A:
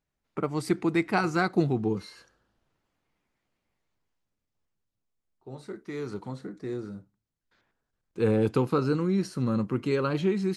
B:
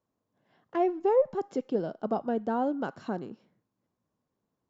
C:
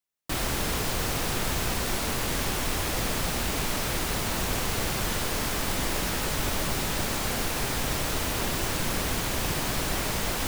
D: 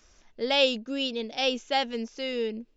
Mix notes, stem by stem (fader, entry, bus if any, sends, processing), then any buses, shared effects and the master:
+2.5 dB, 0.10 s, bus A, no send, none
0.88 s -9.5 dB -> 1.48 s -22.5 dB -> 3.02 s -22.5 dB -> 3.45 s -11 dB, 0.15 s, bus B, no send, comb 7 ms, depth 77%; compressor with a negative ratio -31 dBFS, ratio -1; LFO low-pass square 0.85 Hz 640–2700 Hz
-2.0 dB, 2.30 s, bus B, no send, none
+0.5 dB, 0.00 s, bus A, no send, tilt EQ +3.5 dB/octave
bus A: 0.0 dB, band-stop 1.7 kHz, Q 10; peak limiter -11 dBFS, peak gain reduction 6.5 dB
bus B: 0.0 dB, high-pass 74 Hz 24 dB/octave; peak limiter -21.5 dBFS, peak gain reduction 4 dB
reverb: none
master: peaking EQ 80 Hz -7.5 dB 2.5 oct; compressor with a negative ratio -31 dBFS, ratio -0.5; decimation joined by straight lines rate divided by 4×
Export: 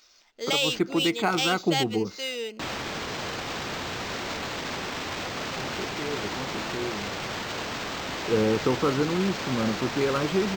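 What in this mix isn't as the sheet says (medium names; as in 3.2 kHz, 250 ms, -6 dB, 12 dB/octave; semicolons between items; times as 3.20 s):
stem B -9.5 dB -> -19.0 dB; stem C -2.0 dB -> +5.5 dB; master: missing compressor with a negative ratio -31 dBFS, ratio -0.5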